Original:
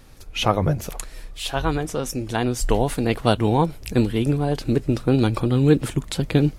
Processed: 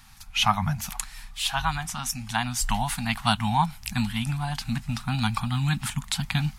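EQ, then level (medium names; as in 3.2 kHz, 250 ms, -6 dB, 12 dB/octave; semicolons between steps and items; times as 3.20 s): elliptic band-stop 220–800 Hz, stop band 60 dB; bass shelf 300 Hz -8.5 dB; +2.5 dB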